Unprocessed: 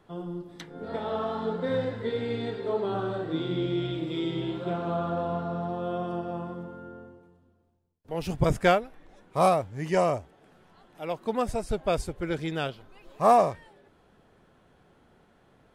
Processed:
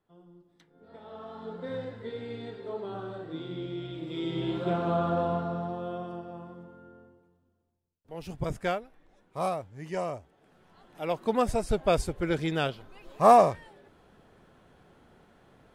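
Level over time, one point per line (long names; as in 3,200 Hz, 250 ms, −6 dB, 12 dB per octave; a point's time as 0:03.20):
0:00.77 −19 dB
0:01.63 −8 dB
0:03.89 −8 dB
0:04.57 +2 dB
0:05.23 +2 dB
0:06.31 −8.5 dB
0:10.18 −8.5 dB
0:11.02 +2 dB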